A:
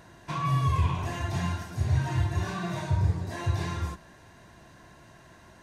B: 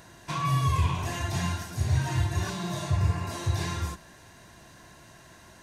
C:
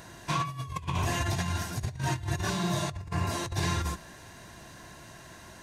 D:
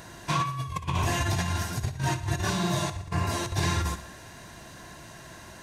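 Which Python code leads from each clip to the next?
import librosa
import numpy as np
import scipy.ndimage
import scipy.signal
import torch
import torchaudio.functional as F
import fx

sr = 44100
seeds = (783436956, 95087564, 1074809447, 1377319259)

y1 = fx.spec_repair(x, sr, seeds[0], start_s=2.52, length_s=0.97, low_hz=670.0, high_hz=2900.0, source='after')
y1 = fx.high_shelf(y1, sr, hz=3500.0, db=9.0)
y2 = fx.over_compress(y1, sr, threshold_db=-30.0, ratio=-0.5)
y3 = fx.echo_feedback(y2, sr, ms=60, feedback_pct=57, wet_db=-14.0)
y3 = F.gain(torch.from_numpy(y3), 2.5).numpy()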